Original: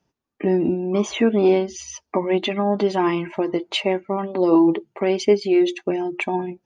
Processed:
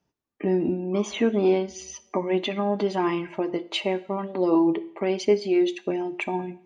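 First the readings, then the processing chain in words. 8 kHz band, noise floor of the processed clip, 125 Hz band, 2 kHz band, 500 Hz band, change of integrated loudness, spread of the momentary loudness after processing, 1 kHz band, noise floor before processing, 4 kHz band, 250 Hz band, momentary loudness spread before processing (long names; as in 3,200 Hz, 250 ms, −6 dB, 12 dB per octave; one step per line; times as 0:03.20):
can't be measured, −76 dBFS, −4.0 dB, −4.5 dB, −4.5 dB, −4.5 dB, 8 LU, −4.5 dB, −77 dBFS, −4.5 dB, −4.5 dB, 8 LU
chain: coupled-rooms reverb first 0.64 s, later 2.5 s, from −25 dB, DRR 14 dB
level −4.5 dB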